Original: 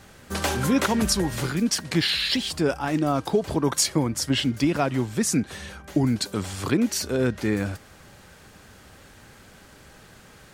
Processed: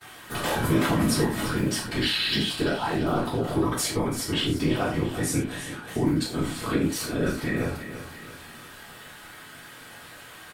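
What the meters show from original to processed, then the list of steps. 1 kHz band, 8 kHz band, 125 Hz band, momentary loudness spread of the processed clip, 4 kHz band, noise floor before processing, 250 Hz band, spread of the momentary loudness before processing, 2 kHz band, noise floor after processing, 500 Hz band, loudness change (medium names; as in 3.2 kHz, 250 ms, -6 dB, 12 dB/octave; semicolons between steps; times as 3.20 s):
-0.5 dB, -4.5 dB, -0.5 dB, 20 LU, -1.5 dB, -50 dBFS, -2.0 dB, 7 LU, 0.0 dB, -45 dBFS, -1.5 dB, -2.0 dB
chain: high-pass 120 Hz; band-stop 430 Hz, Q 12; gate with hold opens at -41 dBFS; peaking EQ 6.1 kHz -8.5 dB 0.72 oct; in parallel at 0 dB: peak limiter -18 dBFS, peak gain reduction 8.5 dB; on the sum: flange 0.19 Hz, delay 2.4 ms, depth 6.3 ms, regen +62%; whisper effect; on a send: feedback delay 340 ms, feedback 41%, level -12.5 dB; on the sum: gated-style reverb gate 130 ms falling, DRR -3.5 dB; tape noise reduction on one side only encoder only; trim -6 dB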